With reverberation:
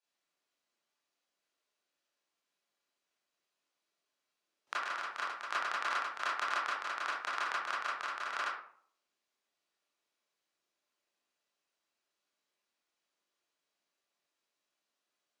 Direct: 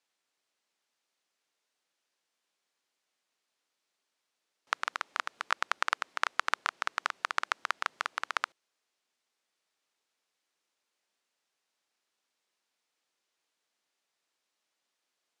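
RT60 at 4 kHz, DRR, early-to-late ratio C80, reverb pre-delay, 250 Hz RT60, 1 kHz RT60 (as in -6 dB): 0.30 s, -8.5 dB, 6.5 dB, 21 ms, 0.60 s, 0.55 s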